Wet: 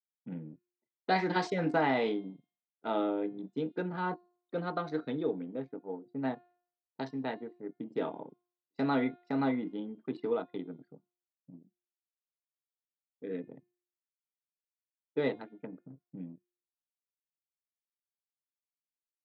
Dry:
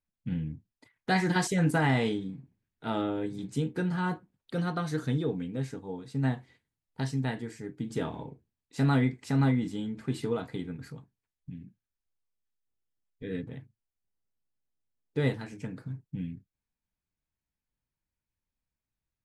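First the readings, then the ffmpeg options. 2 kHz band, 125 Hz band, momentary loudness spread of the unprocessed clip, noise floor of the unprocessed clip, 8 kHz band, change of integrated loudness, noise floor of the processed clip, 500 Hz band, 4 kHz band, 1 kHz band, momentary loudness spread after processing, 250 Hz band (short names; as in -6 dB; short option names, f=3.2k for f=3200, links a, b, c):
-4.0 dB, -14.0 dB, 18 LU, under -85 dBFS, under -15 dB, -3.5 dB, under -85 dBFS, +0.5 dB, -5.0 dB, +0.5 dB, 17 LU, -4.0 dB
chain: -af "anlmdn=1,highpass=f=220:w=0.5412,highpass=f=220:w=1.3066,equalizer=f=230:t=q:w=4:g=-5,equalizer=f=630:t=q:w=4:g=4,equalizer=f=1.7k:t=q:w=4:g=-6,equalizer=f=3k:t=q:w=4:g=-5,lowpass=f=4.4k:w=0.5412,lowpass=f=4.4k:w=1.3066,bandreject=f=354.5:t=h:w=4,bandreject=f=709:t=h:w=4,bandreject=f=1.0635k:t=h:w=4,bandreject=f=1.418k:t=h:w=4,bandreject=f=1.7725k:t=h:w=4,bandreject=f=2.127k:t=h:w=4,bandreject=f=2.4815k:t=h:w=4,bandreject=f=2.836k:t=h:w=4,bandreject=f=3.1905k:t=h:w=4,bandreject=f=3.545k:t=h:w=4,bandreject=f=3.8995k:t=h:w=4,bandreject=f=4.254k:t=h:w=4,bandreject=f=4.6085k:t=h:w=4,bandreject=f=4.963k:t=h:w=4,bandreject=f=5.3175k:t=h:w=4,bandreject=f=5.672k:t=h:w=4"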